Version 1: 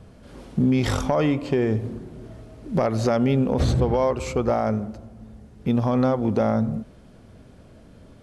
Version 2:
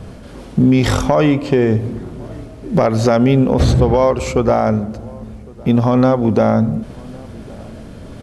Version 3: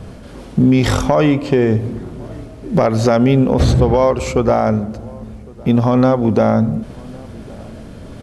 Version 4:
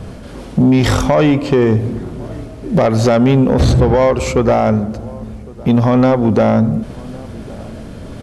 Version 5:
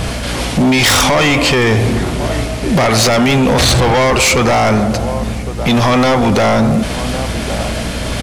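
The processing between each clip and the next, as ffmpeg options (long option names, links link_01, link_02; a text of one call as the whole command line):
ffmpeg -i in.wav -filter_complex "[0:a]areverse,acompressor=mode=upward:threshold=-33dB:ratio=2.5,areverse,asplit=2[link_01][link_02];[link_02]adelay=1108,volume=-24dB,highshelf=frequency=4000:gain=-24.9[link_03];[link_01][link_03]amix=inputs=2:normalize=0,volume=8dB" out.wav
ffmpeg -i in.wav -af anull out.wav
ffmpeg -i in.wav -af "asoftclip=type=tanh:threshold=-8dB,volume=3.5dB" out.wav
ffmpeg -i in.wav -af "aeval=exprs='val(0)+0.0398*(sin(2*PI*60*n/s)+sin(2*PI*2*60*n/s)/2+sin(2*PI*3*60*n/s)/3+sin(2*PI*4*60*n/s)/4+sin(2*PI*5*60*n/s)/5)':channel_layout=same,firequalizer=gain_entry='entry(340,0);entry(700,8);entry(1400,9);entry(2100,15)':delay=0.05:min_phase=1,apsyclip=14.5dB,volume=-8dB" out.wav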